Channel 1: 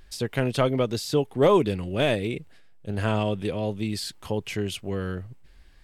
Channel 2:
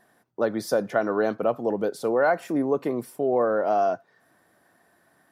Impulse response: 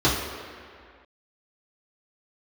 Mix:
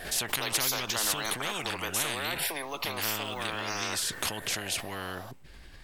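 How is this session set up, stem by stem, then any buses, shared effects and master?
−12.5 dB, 0.00 s, no send, background raised ahead of every attack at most 74 dB per second
+2.0 dB, 0.00 s, no send, high-pass filter 390 Hz 24 dB per octave; frequency shifter mixed with the dry sound +0.45 Hz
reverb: not used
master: every bin compressed towards the loudest bin 10 to 1

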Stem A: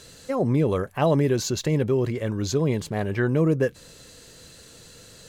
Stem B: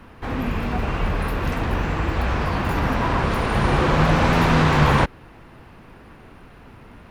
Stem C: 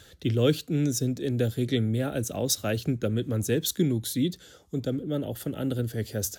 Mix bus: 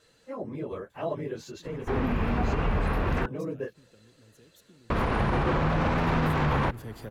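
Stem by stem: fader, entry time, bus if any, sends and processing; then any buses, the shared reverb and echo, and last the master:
−11.0 dB, 0.00 s, no send, random phases in long frames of 50 ms; bass and treble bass −7 dB, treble −10 dB
−1.5 dB, 1.65 s, muted 0:03.26–0:04.90, no send, high-shelf EQ 4,000 Hz −11.5 dB
−3.0 dB, 0.90 s, no send, downward compressor 3 to 1, threshold −35 dBFS, peak gain reduction 13.5 dB; automatic ducking −20 dB, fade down 1.15 s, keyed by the first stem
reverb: not used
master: brickwall limiter −17 dBFS, peak gain reduction 10 dB

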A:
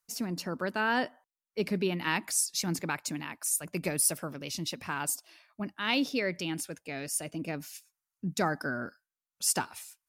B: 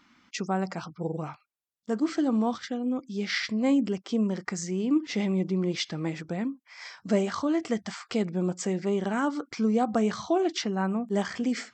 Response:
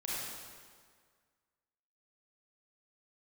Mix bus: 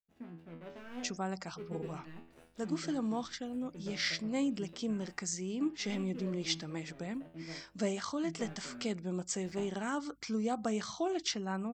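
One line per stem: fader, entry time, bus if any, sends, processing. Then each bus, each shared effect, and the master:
−3.0 dB, 0.00 s, no send, running median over 41 samples; high shelf with overshoot 4,000 Hz −8.5 dB, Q 1.5; tuned comb filter 82 Hz, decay 0.45 s, harmonics all, mix 90%
−9.5 dB, 0.70 s, no send, high-shelf EQ 3,000 Hz +10.5 dB; mains hum 50 Hz, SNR 35 dB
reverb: not used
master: no processing

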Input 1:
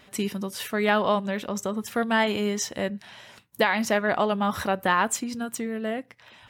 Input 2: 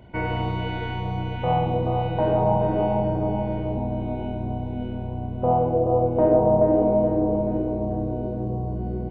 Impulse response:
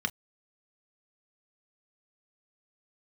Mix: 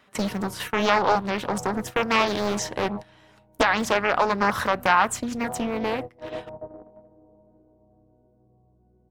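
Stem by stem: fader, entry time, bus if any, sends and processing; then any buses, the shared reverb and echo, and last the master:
+0.5 dB, 0.00 s, no send, multiband upward and downward compressor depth 40%
−16.0 dB, 0.00 s, no send, low-pass filter 1,700 Hz; hum removal 70.02 Hz, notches 4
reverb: not used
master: noise gate −32 dBFS, range −18 dB; parametric band 1,200 Hz +5.5 dB 0.93 octaves; highs frequency-modulated by the lows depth 0.85 ms

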